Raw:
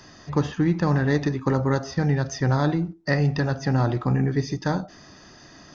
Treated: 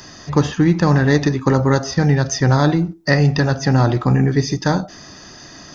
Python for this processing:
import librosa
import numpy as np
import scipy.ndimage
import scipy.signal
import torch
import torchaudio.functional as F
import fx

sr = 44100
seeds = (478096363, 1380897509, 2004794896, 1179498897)

y = fx.high_shelf(x, sr, hz=6000.0, db=10.0)
y = y * 10.0 ** (7.0 / 20.0)